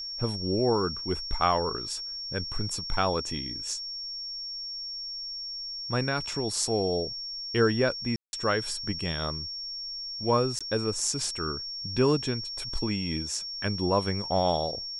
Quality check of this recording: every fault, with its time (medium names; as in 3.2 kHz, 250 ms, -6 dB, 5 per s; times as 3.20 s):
whine 5.5 kHz -34 dBFS
8.16–8.33 s: dropout 171 ms
10.59–10.61 s: dropout 16 ms